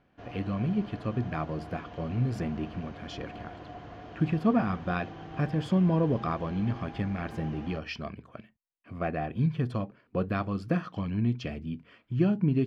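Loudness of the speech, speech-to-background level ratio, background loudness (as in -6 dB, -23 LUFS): -31.0 LUFS, 14.0 dB, -45.0 LUFS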